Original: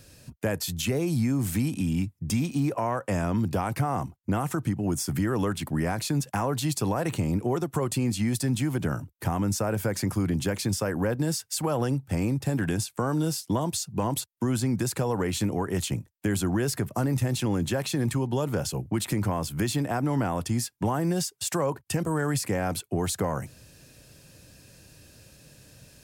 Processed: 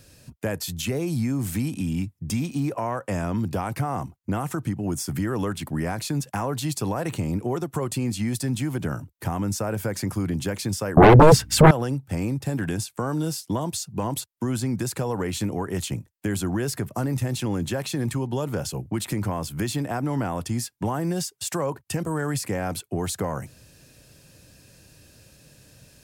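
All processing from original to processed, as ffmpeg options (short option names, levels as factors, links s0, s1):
-filter_complex "[0:a]asettb=1/sr,asplit=3[s0][s1][s2];[s0]atrim=end=10.974[s3];[s1]atrim=start=10.97:end=11.71,asetpts=PTS-STARTPTS,afade=t=in:d=0.004:c=qsin,afade=t=out:st=0.736:d=0.004:c=qsin,bass=f=250:g=14,treble=f=4000:g=-13,aeval=exprs='0.447*sin(PI/2*5.01*val(0)/0.447)':c=same,aeval=exprs='val(0)+0.00891*(sin(2*PI*60*n/s)+sin(2*PI*2*60*n/s)/2+sin(2*PI*3*60*n/s)/3+sin(2*PI*4*60*n/s)/4+sin(2*PI*5*60*n/s)/5)':c=same[s4];[s2]atrim=start=11.706[s5];[s3][s4]acrossfade=d=0.004:c1=hsin:c2=qsin[s6];[s6][s5]acrossfade=d=0.004:c1=qsin:c2=hsin"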